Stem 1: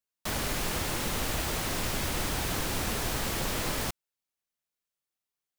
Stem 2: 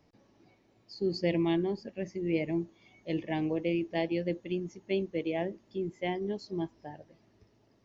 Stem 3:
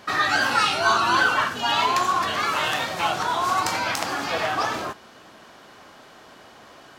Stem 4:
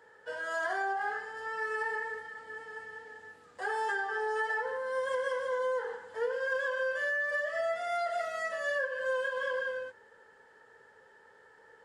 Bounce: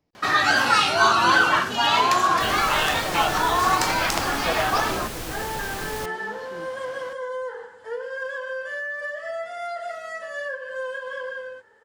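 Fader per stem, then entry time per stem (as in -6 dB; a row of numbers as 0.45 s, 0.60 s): -2.0 dB, -8.5 dB, +2.0 dB, +1.0 dB; 2.15 s, 0.00 s, 0.15 s, 1.70 s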